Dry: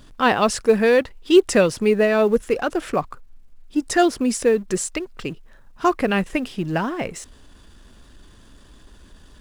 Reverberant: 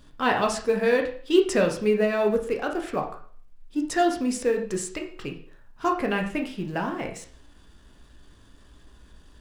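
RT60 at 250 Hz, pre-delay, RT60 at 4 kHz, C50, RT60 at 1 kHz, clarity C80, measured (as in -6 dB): 0.50 s, 6 ms, 0.45 s, 9.0 dB, 0.50 s, 13.0 dB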